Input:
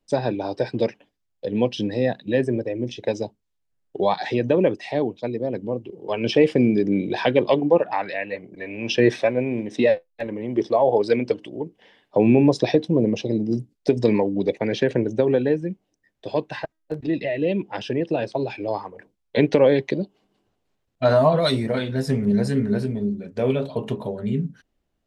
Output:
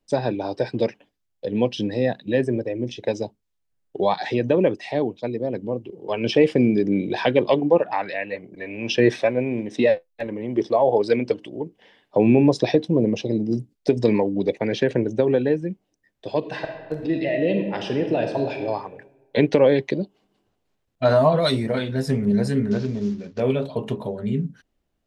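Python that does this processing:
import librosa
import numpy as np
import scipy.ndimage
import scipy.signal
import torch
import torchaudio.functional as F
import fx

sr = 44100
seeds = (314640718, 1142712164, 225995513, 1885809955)

y = fx.reverb_throw(x, sr, start_s=16.38, length_s=2.19, rt60_s=1.3, drr_db=4.5)
y = fx.cvsd(y, sr, bps=32000, at=(22.71, 23.4))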